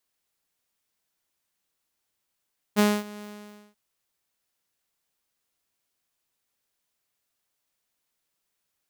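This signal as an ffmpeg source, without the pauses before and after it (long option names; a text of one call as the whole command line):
ffmpeg -f lavfi -i "aevalsrc='0.211*(2*mod(208*t,1)-1)':duration=0.987:sample_rate=44100,afade=type=in:duration=0.032,afade=type=out:start_time=0.032:duration=0.241:silence=0.0794,afade=type=out:start_time=0.46:duration=0.527" out.wav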